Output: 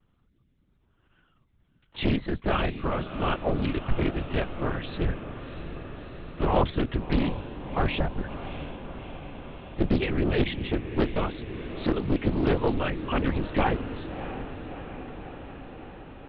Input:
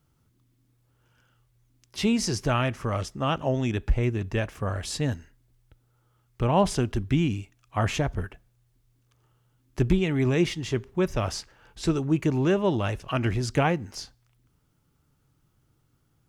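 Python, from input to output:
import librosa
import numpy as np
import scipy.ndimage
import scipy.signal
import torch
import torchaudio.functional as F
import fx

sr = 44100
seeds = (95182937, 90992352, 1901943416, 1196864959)

p1 = fx.dereverb_blind(x, sr, rt60_s=0.61)
p2 = np.clip(10.0 ** (27.5 / 20.0) * p1, -1.0, 1.0) / 10.0 ** (27.5 / 20.0)
p3 = p1 + (p2 * librosa.db_to_amplitude(-6.0))
p4 = fx.lpc_vocoder(p3, sr, seeds[0], excitation='whisper', order=10)
p5 = p4 + fx.echo_diffused(p4, sr, ms=654, feedback_pct=70, wet_db=-11.5, dry=0)
p6 = fx.vibrato(p5, sr, rate_hz=0.52, depth_cents=24.0)
p7 = fx.doppler_dist(p6, sr, depth_ms=0.64)
y = p7 * librosa.db_to_amplitude(-2.0)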